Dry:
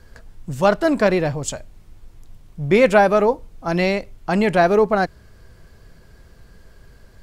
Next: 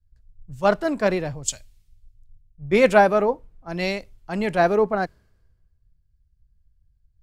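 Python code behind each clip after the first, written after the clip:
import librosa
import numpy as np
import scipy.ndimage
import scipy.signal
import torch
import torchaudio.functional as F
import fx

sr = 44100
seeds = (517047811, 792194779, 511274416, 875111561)

y = fx.band_widen(x, sr, depth_pct=100)
y = y * librosa.db_to_amplitude(-6.0)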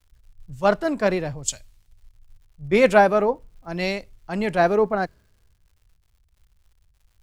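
y = fx.dmg_crackle(x, sr, seeds[0], per_s=170.0, level_db=-53.0)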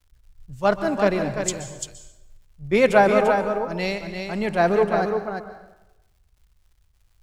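y = x + 10.0 ** (-6.0 / 20.0) * np.pad(x, (int(343 * sr / 1000.0), 0))[:len(x)]
y = fx.rev_plate(y, sr, seeds[1], rt60_s=0.94, hf_ratio=0.7, predelay_ms=115, drr_db=10.0)
y = y * librosa.db_to_amplitude(-1.0)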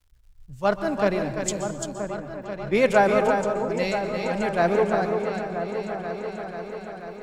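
y = fx.echo_opening(x, sr, ms=487, hz=400, octaves=2, feedback_pct=70, wet_db=-6)
y = y * librosa.db_to_amplitude(-2.5)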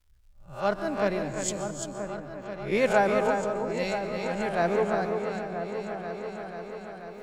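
y = fx.spec_swells(x, sr, rise_s=0.32)
y = y * librosa.db_to_amplitude(-5.0)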